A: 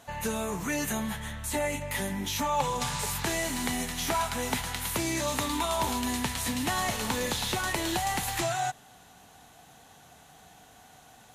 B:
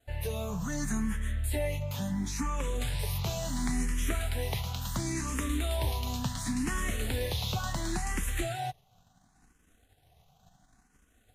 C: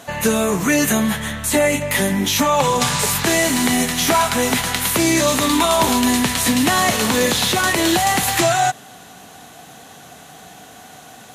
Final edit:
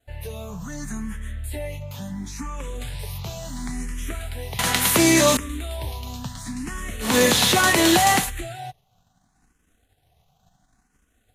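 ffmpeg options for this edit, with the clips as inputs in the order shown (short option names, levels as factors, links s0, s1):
-filter_complex "[2:a]asplit=2[s0][s1];[1:a]asplit=3[s2][s3][s4];[s2]atrim=end=4.592[s5];[s0]atrim=start=4.588:end=5.372[s6];[s3]atrim=start=5.368:end=7.16[s7];[s1]atrim=start=7:end=8.31[s8];[s4]atrim=start=8.15[s9];[s5][s6]acrossfade=d=0.004:c1=hsin:c2=hsin[s10];[s10][s7]acrossfade=d=0.004:c1=hsin:c2=hsin[s11];[s11][s8]acrossfade=d=0.16:c1=tri:c2=tri[s12];[s12][s9]acrossfade=d=0.16:c1=tri:c2=tri"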